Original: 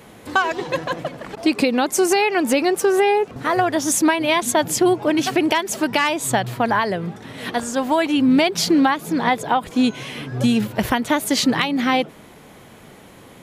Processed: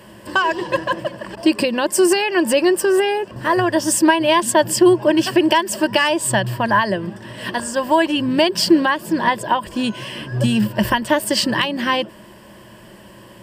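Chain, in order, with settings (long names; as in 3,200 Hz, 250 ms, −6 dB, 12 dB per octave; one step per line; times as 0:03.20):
EQ curve with evenly spaced ripples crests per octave 1.3, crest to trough 12 dB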